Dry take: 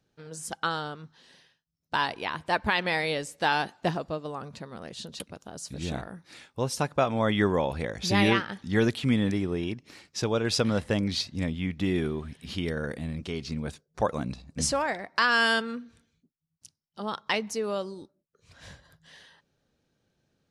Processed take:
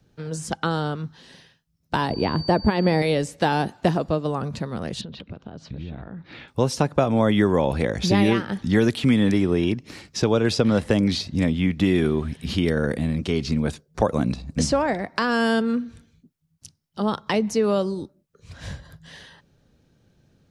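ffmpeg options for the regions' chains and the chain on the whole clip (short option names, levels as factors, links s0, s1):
-filter_complex "[0:a]asettb=1/sr,asplit=3[s0][s1][s2];[s0]atrim=end=2.104[s3];[s1]atrim=start=2.1:end=3.02,asetpts=PTS-STARTPTS,afade=t=in:d=0.004:c=qsin,afade=t=out:st=0.916:d=0.004:c=qsin,tiltshelf=f=880:g=8.5,aeval=exprs='val(0)+0.01*sin(2*PI*4600*n/s)':c=same[s4];[s2]atrim=start=3.016[s5];[s3][s4]acrossfade=d=0.004:c1=hsin:c2=qsin[s6];[s6][s5]acrossfade=d=0.004:c1=qsin:c2=hsin,asettb=1/sr,asplit=3[s7][s8][s9];[s7]atrim=end=5.014[s10];[s8]atrim=start=5.01:end=6.48,asetpts=PTS-STARTPTS,afade=t=in:d=0.004:c=qsin,afade=t=out:st=1.466:d=0.004:c=qsin,lowpass=f=3600:w=0.5412,lowpass=f=3600:w=1.3066,acompressor=threshold=0.00631:ratio=12:attack=3.2:release=140:knee=1:detection=peak[s11];[s9]atrim=start=6.476[s12];[s10][s11]acrossfade=d=0.004:c1=hsin:c2=qsin[s13];[s13][s12]acrossfade=d=0.004:c1=qsin:c2=hsin,lowshelf=f=270:g=10,acrossover=split=200|740|7000[s14][s15][s16][s17];[s14]acompressor=threshold=0.0158:ratio=4[s18];[s15]acompressor=threshold=0.0562:ratio=4[s19];[s16]acompressor=threshold=0.0178:ratio=4[s20];[s17]acompressor=threshold=0.00251:ratio=4[s21];[s18][s19][s20][s21]amix=inputs=4:normalize=0,volume=2.37"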